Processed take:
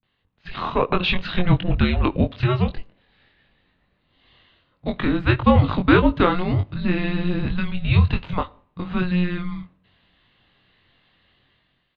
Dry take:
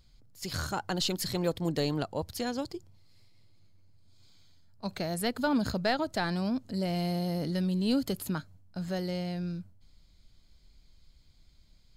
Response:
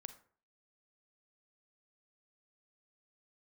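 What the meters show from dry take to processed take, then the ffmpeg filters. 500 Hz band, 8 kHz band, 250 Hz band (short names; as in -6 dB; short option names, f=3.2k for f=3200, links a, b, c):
+8.5 dB, under -25 dB, +9.0 dB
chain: -filter_complex "[0:a]acrossover=split=210[a][b];[b]adelay=30[c];[a][c]amix=inputs=2:normalize=0,asplit=2[d][e];[1:a]atrim=start_sample=2205,asetrate=37044,aresample=44100[f];[e][f]afir=irnorm=-1:irlink=0,volume=-6.5dB[g];[d][g]amix=inputs=2:normalize=0,highpass=f=240:t=q:w=0.5412,highpass=f=240:t=q:w=1.307,lowpass=f=3.4k:t=q:w=0.5176,lowpass=f=3.4k:t=q:w=0.7071,lowpass=f=3.4k:t=q:w=1.932,afreqshift=-360,asplit=2[h][i];[i]adelay=22,volume=-5dB[j];[h][j]amix=inputs=2:normalize=0,dynaudnorm=f=110:g=11:m=10.5dB,volume=2dB"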